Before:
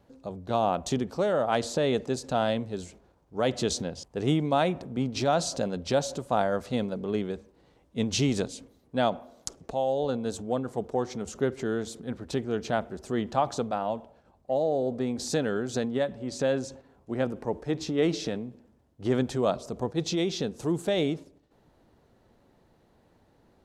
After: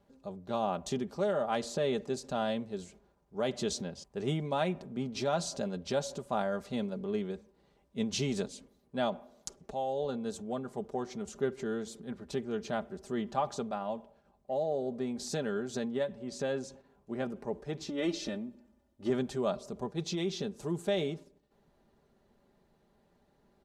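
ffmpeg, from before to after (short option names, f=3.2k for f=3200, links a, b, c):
-filter_complex "[0:a]asettb=1/sr,asplit=3[a][b][c];[a]atrim=end=17.884[d];[b]atrim=start=17.88:end=19.1,asetpts=PTS-STARTPTS,afade=t=in:d=0.004:c=qsin,afade=t=out:st=1.216:d=0.004:c=qsin,aecho=1:1:3.4:0.72,atrim=end_sample=53802[e];[c]atrim=start=19.096[f];[d][e]acrossfade=d=0.004:c1=hsin:c2=qsin[g];[g][f]acrossfade=d=0.004:c1=qsin:c2=hsin,aecho=1:1:5:0.53,volume=-7dB"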